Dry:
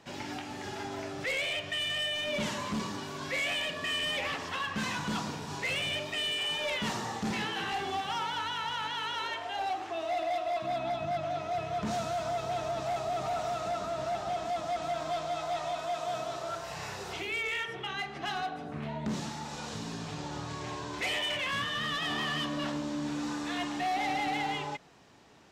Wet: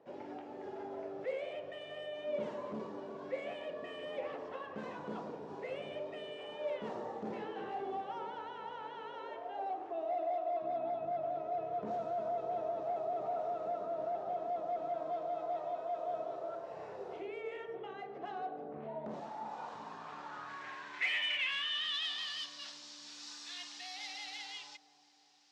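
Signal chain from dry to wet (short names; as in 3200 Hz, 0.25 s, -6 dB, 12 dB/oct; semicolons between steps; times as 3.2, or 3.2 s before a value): band-pass sweep 490 Hz -> 4900 Hz, 18.73–22.5; dark delay 0.351 s, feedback 63%, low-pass 720 Hz, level -13 dB; gain +2 dB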